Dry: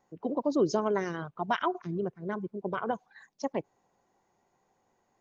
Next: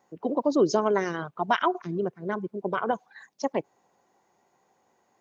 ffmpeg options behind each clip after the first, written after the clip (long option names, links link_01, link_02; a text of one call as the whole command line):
ffmpeg -i in.wav -af "highpass=frequency=210:poles=1,volume=5.5dB" out.wav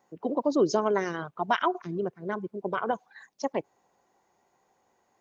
ffmpeg -i in.wav -af "asubboost=boost=2.5:cutoff=84,volume=-1.5dB" out.wav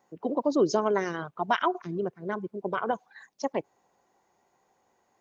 ffmpeg -i in.wav -af anull out.wav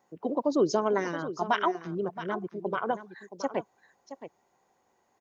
ffmpeg -i in.wav -af "aecho=1:1:672:0.237,volume=-1dB" out.wav